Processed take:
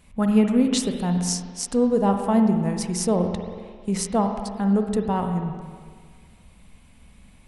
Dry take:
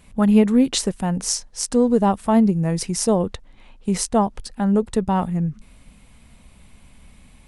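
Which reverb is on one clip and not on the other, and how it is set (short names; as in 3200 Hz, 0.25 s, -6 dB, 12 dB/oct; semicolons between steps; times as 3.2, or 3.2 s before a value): spring tank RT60 1.8 s, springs 45/56 ms, chirp 80 ms, DRR 4.5 dB; gain -4 dB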